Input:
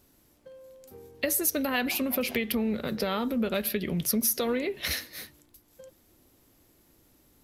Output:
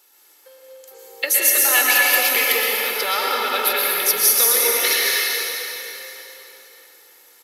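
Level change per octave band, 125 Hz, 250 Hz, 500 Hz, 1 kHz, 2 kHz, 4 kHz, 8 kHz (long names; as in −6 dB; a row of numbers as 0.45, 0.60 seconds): below −15 dB, −10.0 dB, +5.0 dB, +13.5 dB, +16.0 dB, +15.0 dB, +15.0 dB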